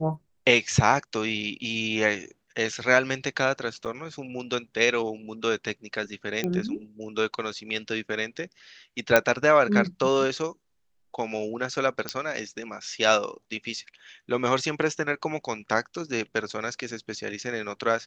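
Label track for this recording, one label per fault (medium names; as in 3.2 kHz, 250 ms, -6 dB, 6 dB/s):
3.850000	3.860000	dropout 6.9 ms
6.440000	6.440000	pop -14 dBFS
9.160000	9.160000	pop -4 dBFS
12.090000	12.090000	pop -12 dBFS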